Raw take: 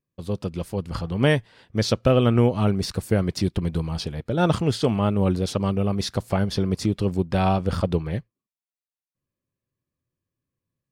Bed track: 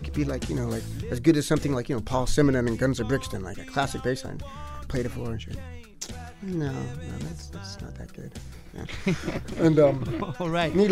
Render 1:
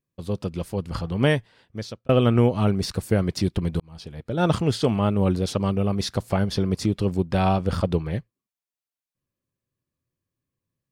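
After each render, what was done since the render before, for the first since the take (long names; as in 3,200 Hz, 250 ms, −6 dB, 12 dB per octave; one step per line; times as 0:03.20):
0:01.20–0:02.09: fade out
0:03.80–0:04.52: fade in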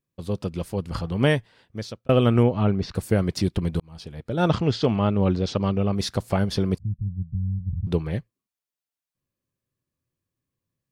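0:02.43–0:02.95: high-frequency loss of the air 190 metres
0:04.48–0:05.95: low-pass filter 5,900 Hz 24 dB per octave
0:06.78–0:07.87: inverse Chebyshev low-pass filter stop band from 650 Hz, stop band 70 dB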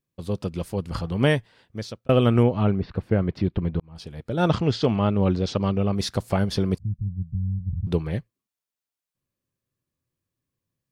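0:02.79–0:03.96: high-frequency loss of the air 360 metres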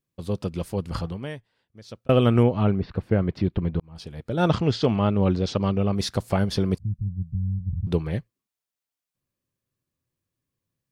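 0:01.05–0:01.99: duck −14.5 dB, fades 0.16 s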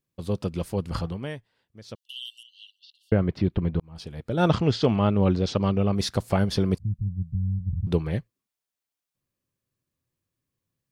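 0:01.95–0:03.12: linear-phase brick-wall high-pass 2,700 Hz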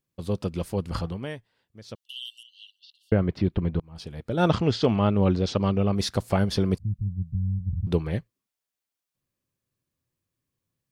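dynamic equaliser 140 Hz, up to −3 dB, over −40 dBFS, Q 4.3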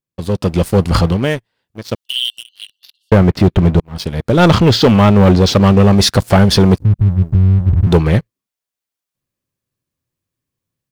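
leveller curve on the samples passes 3
automatic gain control gain up to 8.5 dB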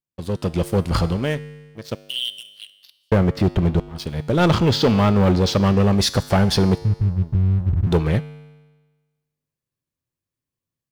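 tuned comb filter 50 Hz, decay 1.3 s, harmonics odd, mix 60%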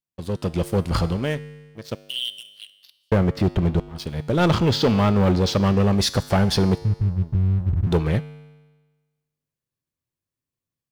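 level −2 dB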